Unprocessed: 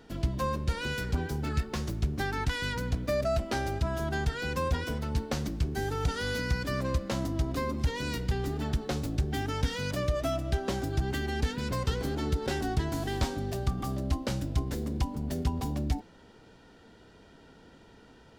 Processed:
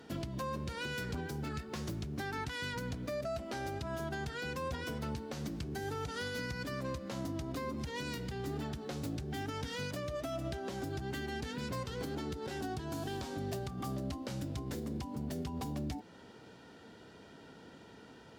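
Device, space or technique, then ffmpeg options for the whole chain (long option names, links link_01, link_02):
podcast mastering chain: -filter_complex "[0:a]asettb=1/sr,asplit=3[link_01][link_02][link_03];[link_01]atrim=end=12.584[link_04];[link_02]atrim=start=12.58:end=13.26,asetpts=PTS-STARTPTS,afade=type=in:duration=0.004:curve=qsin,afade=type=out:start_time=0.676:duration=0.004:curve=qsin,bandreject=frequency=2000:width=8.8[link_05];[link_03]atrim=start=13.256[link_06];[link_04][link_05]acrossfade=duration=0.004:curve1=hsin:curve2=qsin[link_07];[link_07][link_06]acrossfade=duration=0.004:curve1=qsin:curve2=hsin,highpass=100,acompressor=threshold=-34dB:ratio=2,alimiter=level_in=6.5dB:limit=-24dB:level=0:latency=1:release=227,volume=-6.5dB,volume=1.5dB" -ar 48000 -c:a libmp3lame -b:a 128k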